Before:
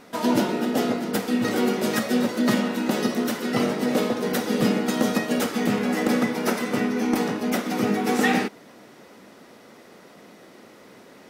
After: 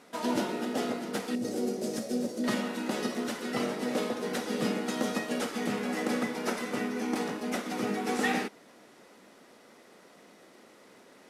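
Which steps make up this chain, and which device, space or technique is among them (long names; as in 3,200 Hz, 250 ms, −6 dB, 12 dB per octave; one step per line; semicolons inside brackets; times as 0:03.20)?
0:01.35–0:02.44: flat-topped bell 1,800 Hz −14.5 dB 2.4 octaves
early wireless headset (high-pass filter 220 Hz 6 dB per octave; variable-slope delta modulation 64 kbit/s)
level −6.5 dB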